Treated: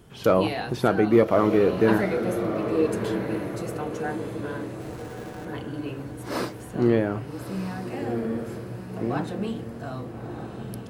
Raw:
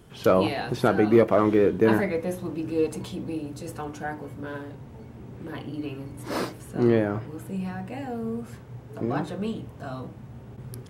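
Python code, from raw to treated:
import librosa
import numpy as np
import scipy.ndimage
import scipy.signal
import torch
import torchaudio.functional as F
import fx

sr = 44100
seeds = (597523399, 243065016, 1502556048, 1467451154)

y = fx.schmitt(x, sr, flips_db=-53.5, at=(4.8, 5.45))
y = fx.echo_diffused(y, sr, ms=1267, feedback_pct=43, wet_db=-8)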